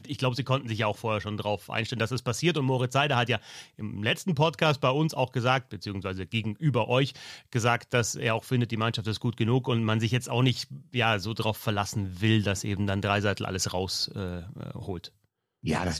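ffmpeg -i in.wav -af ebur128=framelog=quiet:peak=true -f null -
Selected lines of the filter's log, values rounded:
Integrated loudness:
  I:         -27.8 LUFS
  Threshold: -38.0 LUFS
Loudness range:
  LRA:         1.9 LU
  Threshold: -47.7 LUFS
  LRA low:   -28.5 LUFS
  LRA high:  -26.7 LUFS
True peak:
  Peak:       -9.7 dBFS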